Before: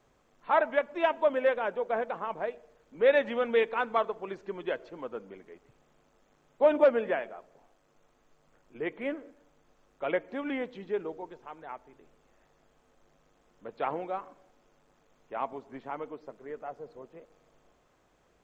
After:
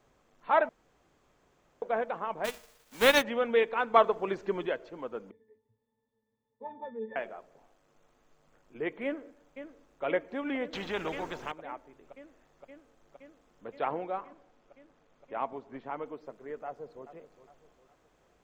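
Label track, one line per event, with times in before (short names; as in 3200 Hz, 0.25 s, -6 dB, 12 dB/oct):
0.690000	1.820000	room tone
2.440000	3.210000	spectral whitening exponent 0.3
3.940000	4.670000	gain +6 dB
5.310000	7.160000	octave resonator A, decay 0.24 s
9.040000	10.040000	echo throw 0.52 s, feedback 85%, level -10.5 dB
10.730000	11.520000	spectral compressor 2:1
13.850000	16.060000	air absorption 70 m
16.650000	17.050000	echo throw 0.41 s, feedback 40%, level -13 dB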